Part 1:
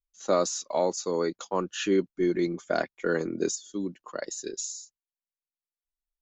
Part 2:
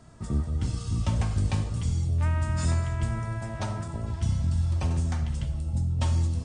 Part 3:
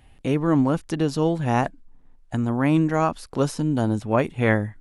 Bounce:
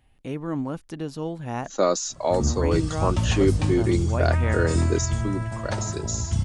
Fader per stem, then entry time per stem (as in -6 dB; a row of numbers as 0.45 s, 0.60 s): +3.0 dB, +2.5 dB, -9.0 dB; 1.50 s, 2.10 s, 0.00 s